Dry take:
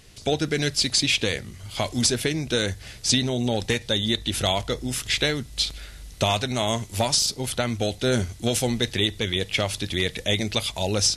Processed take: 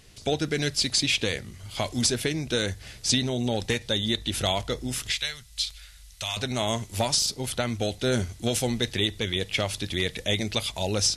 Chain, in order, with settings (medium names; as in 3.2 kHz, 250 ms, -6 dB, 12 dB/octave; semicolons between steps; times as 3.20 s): 5.12–6.37 s: amplifier tone stack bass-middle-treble 10-0-10; trim -2.5 dB